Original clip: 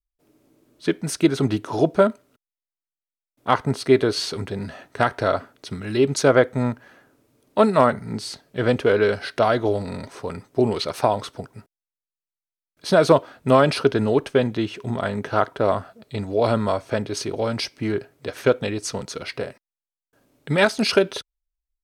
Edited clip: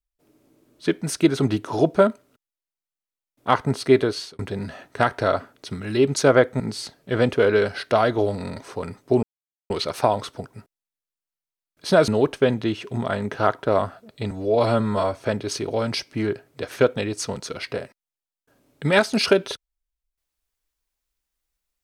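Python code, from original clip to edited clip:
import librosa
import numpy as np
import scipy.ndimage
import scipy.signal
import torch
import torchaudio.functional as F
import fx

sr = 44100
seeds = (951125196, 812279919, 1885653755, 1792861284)

y = fx.edit(x, sr, fx.fade_out_span(start_s=3.99, length_s=0.4),
    fx.cut(start_s=6.6, length_s=1.47),
    fx.insert_silence(at_s=10.7, length_s=0.47),
    fx.cut(start_s=13.08, length_s=0.93),
    fx.stretch_span(start_s=16.24, length_s=0.55, factor=1.5), tone=tone)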